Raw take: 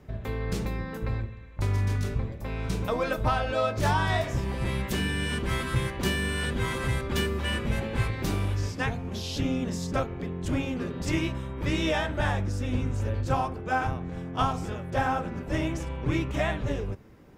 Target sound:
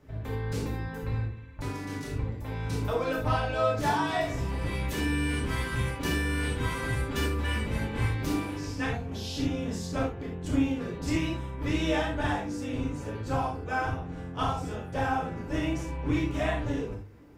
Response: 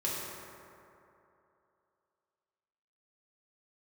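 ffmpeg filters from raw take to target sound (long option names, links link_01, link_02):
-filter_complex "[0:a]bandreject=frequency=50:width_type=h:width=6,bandreject=frequency=100:width_type=h:width=6,bandreject=frequency=150:width_type=h:width=6[link_01];[1:a]atrim=start_sample=2205,atrim=end_sample=3087,asetrate=34398,aresample=44100[link_02];[link_01][link_02]afir=irnorm=-1:irlink=0,volume=-6dB"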